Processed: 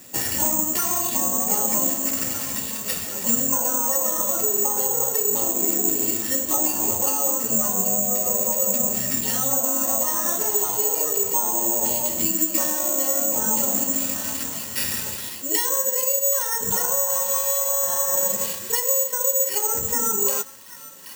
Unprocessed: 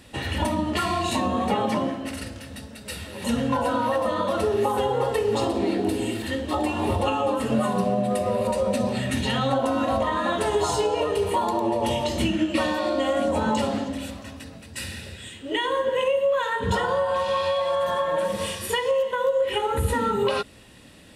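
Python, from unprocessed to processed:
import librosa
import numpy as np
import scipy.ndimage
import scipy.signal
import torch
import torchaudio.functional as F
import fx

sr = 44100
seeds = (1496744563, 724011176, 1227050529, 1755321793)

p1 = scipy.signal.sosfilt(scipy.signal.butter(2, 140.0, 'highpass', fs=sr, output='sos'), x)
p2 = p1 + fx.echo_wet_highpass(p1, sr, ms=777, feedback_pct=74, hz=1800.0, wet_db=-11.0, dry=0)
p3 = fx.rider(p2, sr, range_db=10, speed_s=0.5)
p4 = scipy.signal.sosfilt(scipy.signal.butter(2, 3100.0, 'lowpass', fs=sr, output='sos'), p3)
p5 = (np.kron(p4[::6], np.eye(6)[0]) * 6)[:len(p4)]
y = F.gain(torch.from_numpy(p5), -5.5).numpy()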